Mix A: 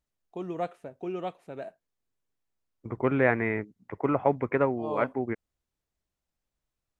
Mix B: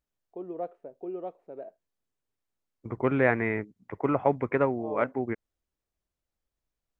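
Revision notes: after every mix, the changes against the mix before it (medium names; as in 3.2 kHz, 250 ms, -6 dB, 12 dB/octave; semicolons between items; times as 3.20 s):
first voice: add band-pass filter 460 Hz, Q 1.5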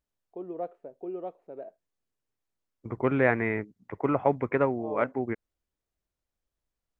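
no change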